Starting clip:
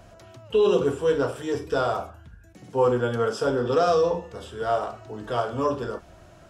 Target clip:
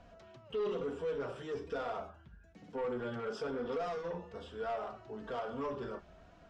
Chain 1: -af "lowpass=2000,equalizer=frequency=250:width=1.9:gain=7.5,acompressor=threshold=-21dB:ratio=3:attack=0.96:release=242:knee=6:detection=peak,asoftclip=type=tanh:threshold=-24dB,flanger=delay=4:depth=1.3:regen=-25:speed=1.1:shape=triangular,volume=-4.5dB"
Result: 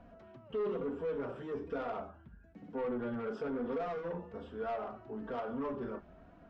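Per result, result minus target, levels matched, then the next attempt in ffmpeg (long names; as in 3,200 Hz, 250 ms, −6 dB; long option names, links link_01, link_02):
4,000 Hz band −8.0 dB; 250 Hz band +4.0 dB
-af "lowpass=4400,equalizer=frequency=250:width=1.9:gain=7.5,acompressor=threshold=-21dB:ratio=3:attack=0.96:release=242:knee=6:detection=peak,asoftclip=type=tanh:threshold=-24dB,flanger=delay=4:depth=1.3:regen=-25:speed=1.1:shape=triangular,volume=-4.5dB"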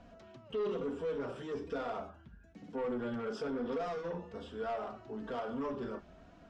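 250 Hz band +3.5 dB
-af "lowpass=4400,acompressor=threshold=-21dB:ratio=3:attack=0.96:release=242:knee=6:detection=peak,asoftclip=type=tanh:threshold=-24dB,flanger=delay=4:depth=1.3:regen=-25:speed=1.1:shape=triangular,volume=-4.5dB"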